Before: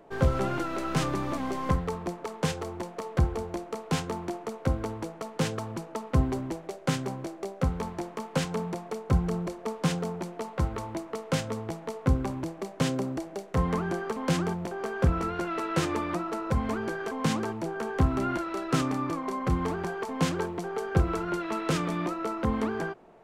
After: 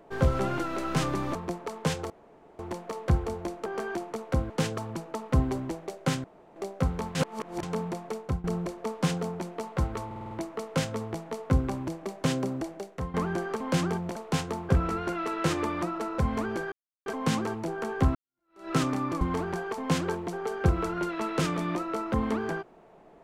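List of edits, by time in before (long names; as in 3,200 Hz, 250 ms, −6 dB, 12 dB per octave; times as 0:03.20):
0:01.35–0:01.93: remove
0:02.68: splice in room tone 0.49 s
0:03.75–0:04.28: swap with 0:14.72–0:15.01
0:04.83–0:05.31: remove
0:07.05–0:07.37: fill with room tone
0:07.96–0:08.44: reverse
0:08.98–0:09.25: fade out, to −18 dB
0:10.87: stutter 0.05 s, 6 plays
0:13.26–0:13.70: fade out, to −14.5 dB
0:17.04: splice in silence 0.34 s
0:18.13–0:18.67: fade in exponential
0:19.19–0:19.52: remove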